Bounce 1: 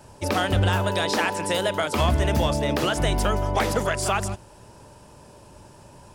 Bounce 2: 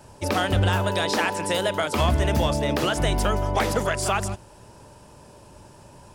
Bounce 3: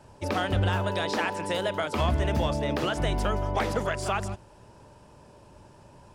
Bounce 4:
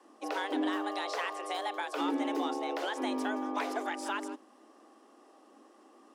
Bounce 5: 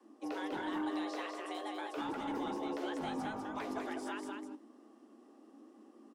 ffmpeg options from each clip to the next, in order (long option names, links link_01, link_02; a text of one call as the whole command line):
ffmpeg -i in.wav -af anull out.wav
ffmpeg -i in.wav -af "highshelf=frequency=6700:gain=-11,volume=-4dB" out.wav
ffmpeg -i in.wav -af "afreqshift=210,volume=-7dB" out.wav
ffmpeg -i in.wav -filter_complex "[0:a]flanger=delay=8:depth=6.5:regen=-47:speed=1.4:shape=triangular,acrossover=split=280|1200[link_01][link_02][link_03];[link_01]aeval=exprs='0.02*sin(PI/2*4.47*val(0)/0.02)':channel_layout=same[link_04];[link_04][link_02][link_03]amix=inputs=3:normalize=0,aecho=1:1:199:0.596,volume=-5dB" out.wav